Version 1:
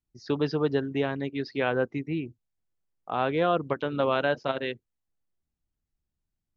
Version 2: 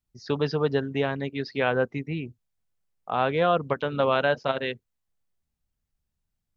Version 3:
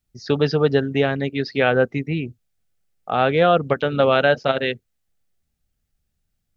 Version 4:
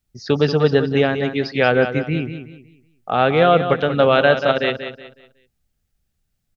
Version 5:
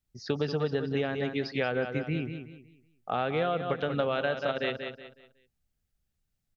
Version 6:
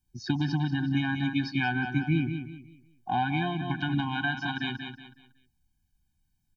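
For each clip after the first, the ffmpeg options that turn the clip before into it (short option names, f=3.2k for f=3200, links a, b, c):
-af "equalizer=f=320:t=o:w=0.38:g=-8,volume=3dB"
-af "equalizer=f=1k:t=o:w=0.21:g=-13,volume=7dB"
-af "aecho=1:1:185|370|555|740:0.335|0.107|0.0343|0.011,volume=2dB"
-af "acompressor=threshold=-17dB:ratio=6,volume=-8dB"
-af "afftfilt=real='re*eq(mod(floor(b*sr/1024/360),2),0)':imag='im*eq(mod(floor(b*sr/1024/360),2),0)':win_size=1024:overlap=0.75,volume=6dB"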